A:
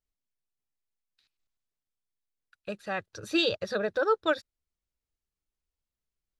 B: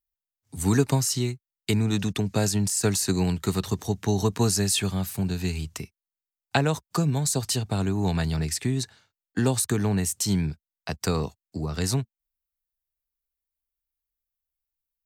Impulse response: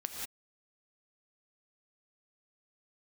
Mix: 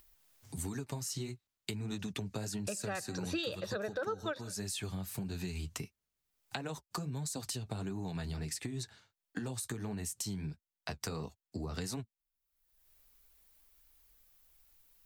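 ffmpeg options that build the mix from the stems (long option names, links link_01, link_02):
-filter_complex "[0:a]highpass=57,volume=1dB,asplit=2[link_01][link_02];[link_02]volume=-18.5dB[link_03];[1:a]acompressor=mode=upward:threshold=-41dB:ratio=2.5,flanger=delay=2.7:depth=8.1:regen=-37:speed=1.5:shape=triangular,acompressor=threshold=-34dB:ratio=6,volume=0.5dB[link_04];[2:a]atrim=start_sample=2205[link_05];[link_03][link_05]afir=irnorm=-1:irlink=0[link_06];[link_01][link_04][link_06]amix=inputs=3:normalize=0,acompressor=threshold=-35dB:ratio=5"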